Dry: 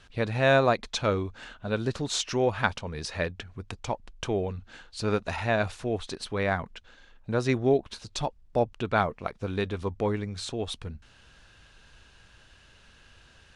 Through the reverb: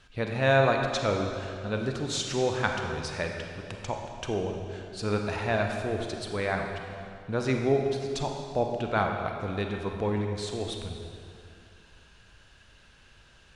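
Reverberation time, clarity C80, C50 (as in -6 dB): 2.4 s, 4.5 dB, 3.0 dB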